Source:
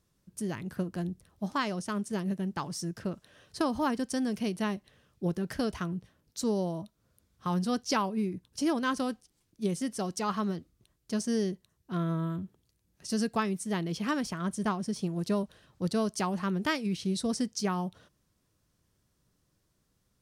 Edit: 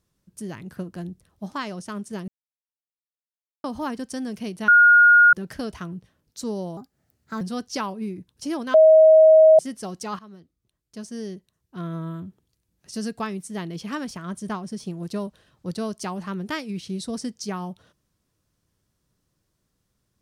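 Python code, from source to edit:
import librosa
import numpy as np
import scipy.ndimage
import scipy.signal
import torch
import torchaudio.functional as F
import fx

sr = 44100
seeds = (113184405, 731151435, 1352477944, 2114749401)

y = fx.edit(x, sr, fx.silence(start_s=2.28, length_s=1.36),
    fx.bleep(start_s=4.68, length_s=0.65, hz=1430.0, db=-9.5),
    fx.speed_span(start_s=6.77, length_s=0.8, speed=1.25),
    fx.bleep(start_s=8.9, length_s=0.85, hz=633.0, db=-8.5),
    fx.fade_in_from(start_s=10.35, length_s=1.88, floor_db=-16.5), tone=tone)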